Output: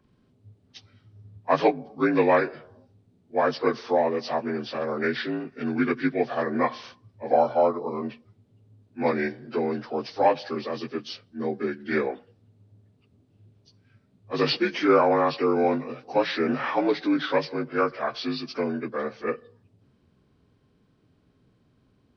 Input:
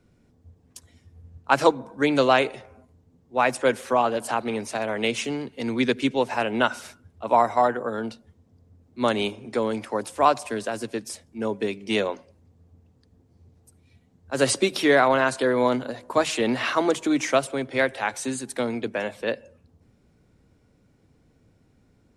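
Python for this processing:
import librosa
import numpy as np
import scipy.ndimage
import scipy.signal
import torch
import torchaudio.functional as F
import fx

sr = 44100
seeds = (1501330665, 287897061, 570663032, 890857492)

y = fx.partial_stretch(x, sr, pct=82)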